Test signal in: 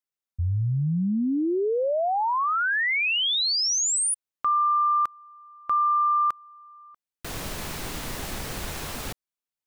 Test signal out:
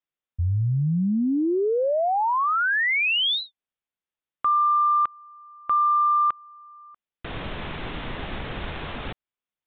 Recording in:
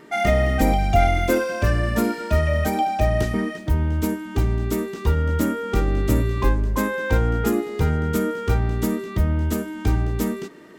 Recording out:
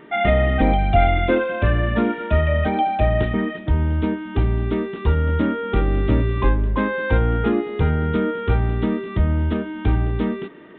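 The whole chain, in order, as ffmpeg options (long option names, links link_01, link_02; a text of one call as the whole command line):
ffmpeg -i in.wav -filter_complex "[0:a]asplit=2[link_01][link_02];[link_02]asoftclip=type=tanh:threshold=-13.5dB,volume=-12dB[link_03];[link_01][link_03]amix=inputs=2:normalize=0,aresample=8000,aresample=44100" out.wav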